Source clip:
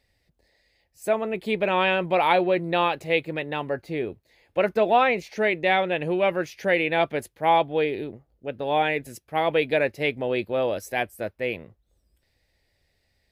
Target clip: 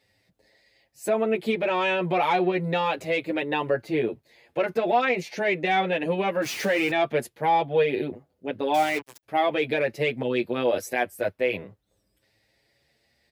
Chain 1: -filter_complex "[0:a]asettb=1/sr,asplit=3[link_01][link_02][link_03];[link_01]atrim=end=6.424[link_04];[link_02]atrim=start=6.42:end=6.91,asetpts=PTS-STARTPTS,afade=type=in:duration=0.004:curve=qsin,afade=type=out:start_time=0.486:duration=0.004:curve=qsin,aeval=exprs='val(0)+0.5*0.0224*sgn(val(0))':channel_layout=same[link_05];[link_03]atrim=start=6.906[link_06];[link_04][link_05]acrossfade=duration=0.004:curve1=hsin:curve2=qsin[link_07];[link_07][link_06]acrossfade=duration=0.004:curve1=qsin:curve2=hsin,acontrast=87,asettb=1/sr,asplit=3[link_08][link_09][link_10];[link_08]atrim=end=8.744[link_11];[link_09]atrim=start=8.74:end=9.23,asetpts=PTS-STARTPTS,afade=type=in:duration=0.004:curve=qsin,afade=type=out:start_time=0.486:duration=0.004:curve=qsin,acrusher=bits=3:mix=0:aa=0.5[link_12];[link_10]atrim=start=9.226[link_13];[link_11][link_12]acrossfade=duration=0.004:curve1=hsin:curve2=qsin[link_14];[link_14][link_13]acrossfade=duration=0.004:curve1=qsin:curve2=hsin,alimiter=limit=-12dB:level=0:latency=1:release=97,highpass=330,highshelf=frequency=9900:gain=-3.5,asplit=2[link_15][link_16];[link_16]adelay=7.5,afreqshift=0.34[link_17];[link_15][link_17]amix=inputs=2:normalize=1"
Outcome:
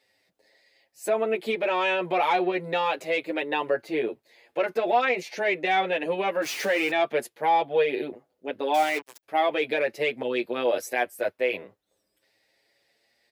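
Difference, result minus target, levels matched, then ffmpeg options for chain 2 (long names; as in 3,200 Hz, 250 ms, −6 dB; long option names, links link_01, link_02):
125 Hz band −10.5 dB
-filter_complex "[0:a]asettb=1/sr,asplit=3[link_01][link_02][link_03];[link_01]atrim=end=6.424[link_04];[link_02]atrim=start=6.42:end=6.91,asetpts=PTS-STARTPTS,afade=type=in:duration=0.004:curve=qsin,afade=type=out:start_time=0.486:duration=0.004:curve=qsin,aeval=exprs='val(0)+0.5*0.0224*sgn(val(0))':channel_layout=same[link_05];[link_03]atrim=start=6.906[link_06];[link_04][link_05]acrossfade=duration=0.004:curve1=hsin:curve2=qsin[link_07];[link_07][link_06]acrossfade=duration=0.004:curve1=qsin:curve2=hsin,acontrast=87,asettb=1/sr,asplit=3[link_08][link_09][link_10];[link_08]atrim=end=8.744[link_11];[link_09]atrim=start=8.74:end=9.23,asetpts=PTS-STARTPTS,afade=type=in:duration=0.004:curve=qsin,afade=type=out:start_time=0.486:duration=0.004:curve=qsin,acrusher=bits=3:mix=0:aa=0.5[link_12];[link_10]atrim=start=9.226[link_13];[link_11][link_12]acrossfade=duration=0.004:curve1=hsin:curve2=qsin[link_14];[link_14][link_13]acrossfade=duration=0.004:curve1=qsin:curve2=hsin,alimiter=limit=-12dB:level=0:latency=1:release=97,highpass=120,highshelf=frequency=9900:gain=-3.5,asplit=2[link_15][link_16];[link_16]adelay=7.5,afreqshift=0.34[link_17];[link_15][link_17]amix=inputs=2:normalize=1"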